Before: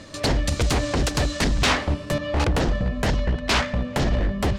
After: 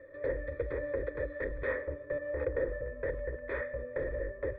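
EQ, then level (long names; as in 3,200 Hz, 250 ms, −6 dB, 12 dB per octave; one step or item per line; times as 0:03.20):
formant resonators in series e
phaser with its sweep stopped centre 740 Hz, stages 6
+3.0 dB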